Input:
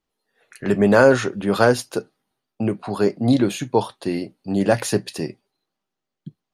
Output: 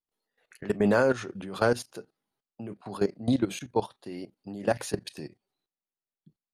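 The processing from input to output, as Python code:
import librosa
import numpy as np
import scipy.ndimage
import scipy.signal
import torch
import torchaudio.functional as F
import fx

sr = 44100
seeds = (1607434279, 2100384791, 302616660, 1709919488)

y = fx.vibrato(x, sr, rate_hz=0.52, depth_cents=59.0)
y = fx.level_steps(y, sr, step_db=16)
y = F.gain(torch.from_numpy(y), -5.5).numpy()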